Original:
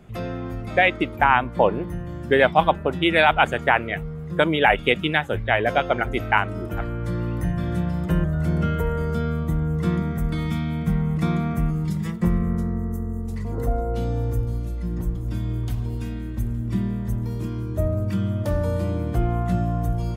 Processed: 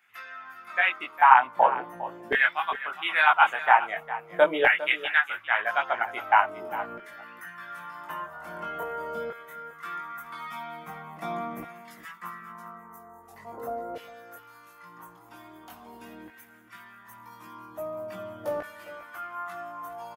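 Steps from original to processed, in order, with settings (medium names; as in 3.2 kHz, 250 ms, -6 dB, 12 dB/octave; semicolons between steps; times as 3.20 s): ten-band graphic EQ 500 Hz -10 dB, 2 kHz -4 dB, 4 kHz -8 dB, 8 kHz -9 dB; LFO high-pass saw down 0.43 Hz 500–1900 Hz; chorus voices 2, 0.17 Hz, delay 20 ms, depth 3.8 ms; delay 405 ms -14.5 dB; trim +3 dB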